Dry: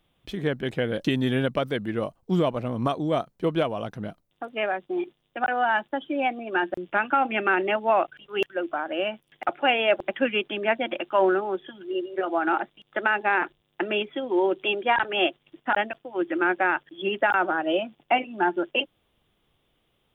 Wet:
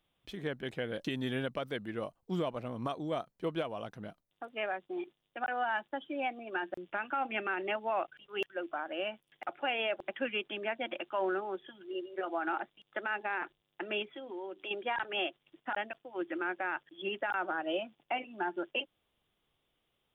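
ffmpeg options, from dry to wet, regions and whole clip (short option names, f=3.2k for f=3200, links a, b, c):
-filter_complex "[0:a]asettb=1/sr,asplit=3[a][b][c];[a]atrim=end=14.124[d];[b]atrim=start=14.12:end=14.71,asetpts=PTS-STARTPTS,afade=t=in:d=0.004:c=qsin,afade=t=out:st=0.586:d=0.004:c=qsin,bandreject=f=50:t=h:w=6,bandreject=f=100:t=h:w=6,bandreject=f=150:t=h:w=6,bandreject=f=200:t=h:w=6,bandreject=f=250:t=h:w=6,bandreject=f=300:t=h:w=6,acompressor=threshold=-33dB:ratio=2.5:attack=3.2:release=140:knee=1:detection=peak[e];[c]atrim=start=14.706[f];[d][e]acrossfade=d=0.004:c1=hsin:c2=qsin[g];[g][f]acrossfade=d=0.004:c1=qsin:c2=hsin,lowshelf=f=420:g=-5,alimiter=limit=-16dB:level=0:latency=1:release=113,volume=-7.5dB"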